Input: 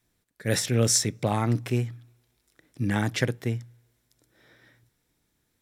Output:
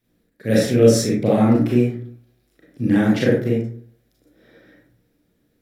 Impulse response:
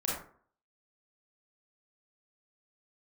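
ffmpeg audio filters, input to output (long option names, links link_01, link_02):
-filter_complex "[0:a]equalizer=frequency=250:width_type=o:width=1:gain=6,equalizer=frequency=500:width_type=o:width=1:gain=6,equalizer=frequency=1000:width_type=o:width=1:gain=-7,equalizer=frequency=8000:width_type=o:width=1:gain=-9[link_01];[1:a]atrim=start_sample=2205[link_02];[link_01][link_02]afir=irnorm=-1:irlink=0"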